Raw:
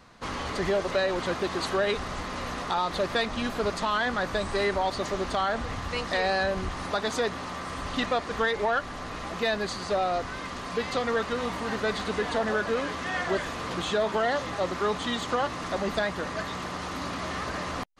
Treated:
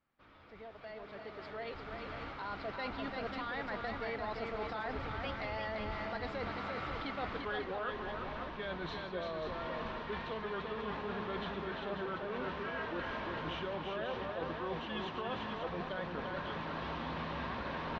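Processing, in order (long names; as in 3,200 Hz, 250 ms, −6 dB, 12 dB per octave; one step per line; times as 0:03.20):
source passing by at 0:07.34, 40 m/s, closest 6.3 metres
camcorder AGC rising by 7.3 dB per second
low-pass filter 3,700 Hz 24 dB per octave
reversed playback
downward compressor 6 to 1, threshold −43 dBFS, peak gain reduction 17 dB
reversed playback
multi-tap delay 343/540 ms −4.5/−7.5 dB
level +4.5 dB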